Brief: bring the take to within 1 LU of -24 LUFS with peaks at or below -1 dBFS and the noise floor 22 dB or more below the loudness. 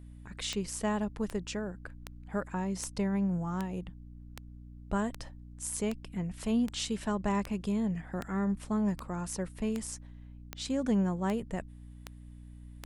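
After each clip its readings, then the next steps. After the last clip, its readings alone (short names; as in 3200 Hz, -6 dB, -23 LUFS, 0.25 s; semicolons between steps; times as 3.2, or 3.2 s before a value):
clicks 17; hum 60 Hz; harmonics up to 300 Hz; hum level -46 dBFS; loudness -33.5 LUFS; peak -18.0 dBFS; loudness target -24.0 LUFS
-> de-click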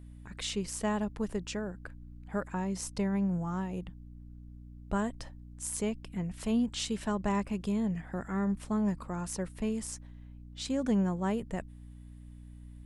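clicks 0; hum 60 Hz; harmonics up to 300 Hz; hum level -46 dBFS
-> de-hum 60 Hz, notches 5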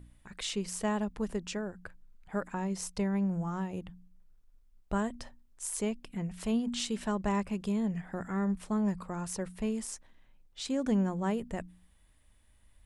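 hum none; loudness -34.0 LUFS; peak -18.5 dBFS; loudness target -24.0 LUFS
-> gain +10 dB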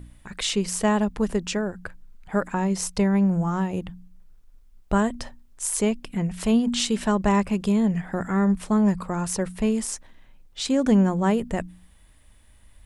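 loudness -24.0 LUFS; peak -8.5 dBFS; noise floor -53 dBFS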